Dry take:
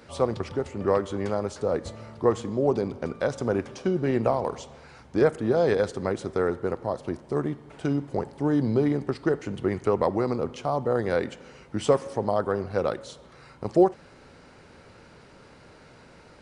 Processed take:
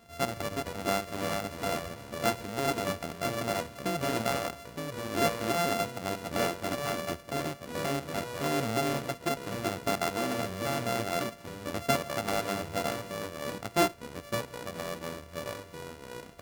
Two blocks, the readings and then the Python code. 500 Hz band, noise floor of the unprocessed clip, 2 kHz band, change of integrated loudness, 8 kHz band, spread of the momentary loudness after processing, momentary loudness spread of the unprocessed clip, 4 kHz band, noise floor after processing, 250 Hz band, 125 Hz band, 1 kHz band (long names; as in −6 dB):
−7.5 dB, −52 dBFS, +2.5 dB, −5.5 dB, can't be measured, 10 LU, 9 LU, +8.0 dB, −49 dBFS, −7.5 dB, −6.0 dB, −0.5 dB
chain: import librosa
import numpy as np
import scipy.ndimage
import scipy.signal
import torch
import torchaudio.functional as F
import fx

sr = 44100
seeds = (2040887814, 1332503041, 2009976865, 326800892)

y = np.r_[np.sort(x[:len(x) // 64 * 64].reshape(-1, 64), axis=1).ravel(), x[len(x) // 64 * 64:]]
y = fx.echo_pitch(y, sr, ms=187, semitones=-3, count=2, db_per_echo=-6.0)
y = y * 10.0 ** (-7.0 / 20.0)